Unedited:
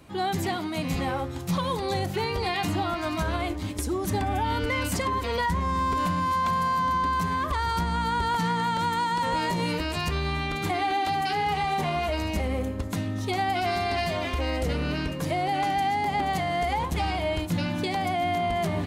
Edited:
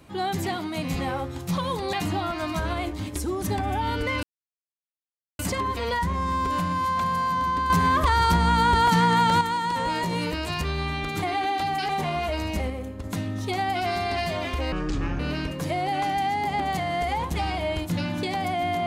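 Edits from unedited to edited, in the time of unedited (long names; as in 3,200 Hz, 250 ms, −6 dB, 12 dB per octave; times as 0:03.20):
0:01.93–0:02.56: remove
0:04.86: splice in silence 1.16 s
0:07.17–0:08.88: clip gain +6.5 dB
0:11.36–0:11.69: remove
0:12.50–0:12.84: clip gain −5 dB
0:14.52–0:14.80: play speed 59%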